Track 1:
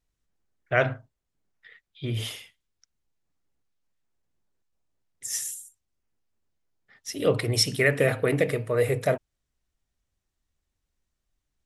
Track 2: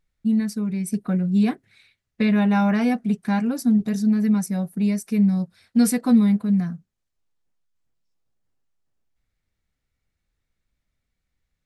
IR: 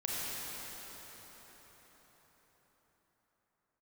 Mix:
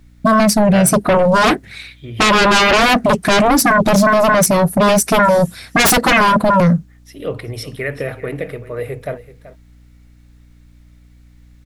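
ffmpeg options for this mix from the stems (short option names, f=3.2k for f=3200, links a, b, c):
-filter_complex "[0:a]equalizer=f=6.9k:w=1.1:g=-12,aeval=exprs='val(0)+0.00631*(sin(2*PI*60*n/s)+sin(2*PI*2*60*n/s)/2+sin(2*PI*3*60*n/s)/3+sin(2*PI*4*60*n/s)/4+sin(2*PI*5*60*n/s)/5)':c=same,volume=-1dB,asplit=2[a][b];[b]volume=-16dB[c];[1:a]aeval=exprs='0.398*sin(PI/2*7.94*val(0)/0.398)':c=same,volume=0dB[d];[c]aecho=0:1:381:1[e];[a][d][e]amix=inputs=3:normalize=0"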